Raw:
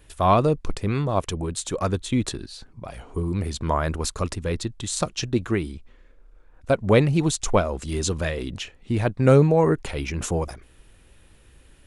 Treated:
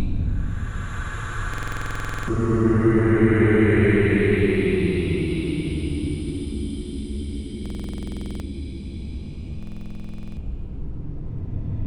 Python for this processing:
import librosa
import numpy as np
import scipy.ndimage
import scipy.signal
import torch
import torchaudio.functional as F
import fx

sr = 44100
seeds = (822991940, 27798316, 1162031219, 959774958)

y = fx.dmg_wind(x, sr, seeds[0], corner_hz=87.0, level_db=-19.0)
y = fx.paulstretch(y, sr, seeds[1], factor=26.0, window_s=0.1, from_s=5.41)
y = fx.buffer_glitch(y, sr, at_s=(1.49, 7.61, 9.58), block=2048, repeats=16)
y = y * 10.0 ** (3.5 / 20.0)